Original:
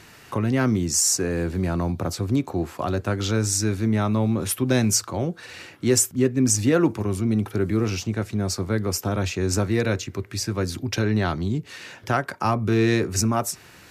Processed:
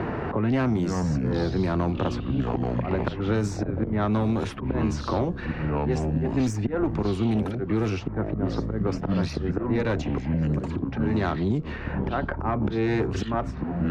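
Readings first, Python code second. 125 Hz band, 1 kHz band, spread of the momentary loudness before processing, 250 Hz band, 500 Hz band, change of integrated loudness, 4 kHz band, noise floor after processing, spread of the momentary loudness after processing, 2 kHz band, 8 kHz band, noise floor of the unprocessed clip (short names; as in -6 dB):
-1.5 dB, -1.5 dB, 9 LU, -1.5 dB, -2.5 dB, -3.0 dB, -10.5 dB, -34 dBFS, 4 LU, -4.5 dB, -22.5 dB, -48 dBFS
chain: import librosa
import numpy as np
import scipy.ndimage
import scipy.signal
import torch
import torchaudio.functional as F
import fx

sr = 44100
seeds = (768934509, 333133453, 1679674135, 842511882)

y = fx.lowpass(x, sr, hz=1400.0, slope=6)
y = fx.auto_swell(y, sr, attack_ms=319.0)
y = fx.low_shelf(y, sr, hz=130.0, db=-9.0)
y = fx.env_lowpass(y, sr, base_hz=820.0, full_db=-21.0)
y = fx.tube_stage(y, sr, drive_db=21.0, bias=0.5)
y = fx.echo_pitch(y, sr, ms=87, semitones=-6, count=3, db_per_echo=-6.0)
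y = fx.band_squash(y, sr, depth_pct=100)
y = y * librosa.db_to_amplitude(5.5)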